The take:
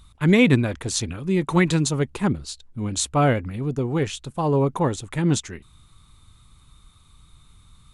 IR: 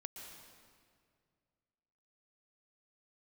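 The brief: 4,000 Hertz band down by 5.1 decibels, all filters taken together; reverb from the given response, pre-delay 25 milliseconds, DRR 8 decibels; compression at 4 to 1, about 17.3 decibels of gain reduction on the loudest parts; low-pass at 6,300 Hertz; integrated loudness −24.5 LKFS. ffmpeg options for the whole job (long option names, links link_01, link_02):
-filter_complex "[0:a]lowpass=6300,equalizer=frequency=4000:width_type=o:gain=-5.5,acompressor=threshold=-34dB:ratio=4,asplit=2[link_01][link_02];[1:a]atrim=start_sample=2205,adelay=25[link_03];[link_02][link_03]afir=irnorm=-1:irlink=0,volume=-4.5dB[link_04];[link_01][link_04]amix=inputs=2:normalize=0,volume=11.5dB"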